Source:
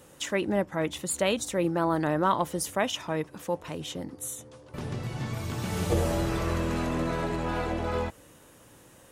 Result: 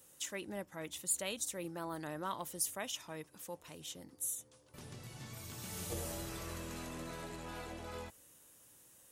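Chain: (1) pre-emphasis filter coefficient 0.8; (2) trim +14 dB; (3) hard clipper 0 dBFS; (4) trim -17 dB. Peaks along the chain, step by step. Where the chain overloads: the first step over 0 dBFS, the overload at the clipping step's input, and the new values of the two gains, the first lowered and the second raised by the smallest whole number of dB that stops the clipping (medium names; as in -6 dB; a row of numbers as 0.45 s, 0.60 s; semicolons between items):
-17.0 dBFS, -3.0 dBFS, -3.0 dBFS, -20.0 dBFS; nothing clips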